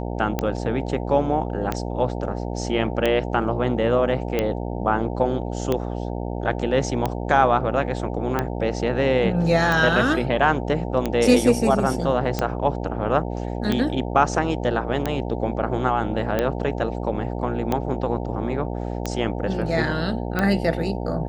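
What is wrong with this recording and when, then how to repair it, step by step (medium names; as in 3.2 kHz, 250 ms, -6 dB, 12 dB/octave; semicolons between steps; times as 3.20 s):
buzz 60 Hz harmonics 15 -28 dBFS
tick 45 rpm -9 dBFS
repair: de-click; de-hum 60 Hz, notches 15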